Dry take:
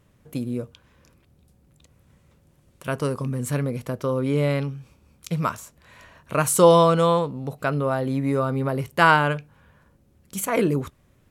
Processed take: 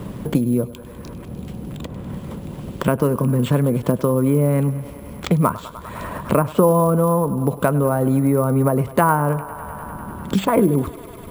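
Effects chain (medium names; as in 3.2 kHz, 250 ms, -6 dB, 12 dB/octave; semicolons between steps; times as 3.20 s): low-pass that closes with the level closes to 1.4 kHz, closed at -16 dBFS; tilt shelf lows +8 dB, about 1.1 kHz; harmonic-percussive split harmonic -6 dB; graphic EQ with 31 bands 200 Hz +4 dB, 1 kHz +5 dB, 8 kHz +11 dB; in parallel at -2.5 dB: compression, threshold -27 dBFS, peak gain reduction 16.5 dB; on the sum: sample-rate reducer 11 kHz, jitter 0%; on a send: thinning echo 100 ms, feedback 75%, high-pass 270 Hz, level -18 dB; on the sum: three bands compressed up and down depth 70%; trim +2 dB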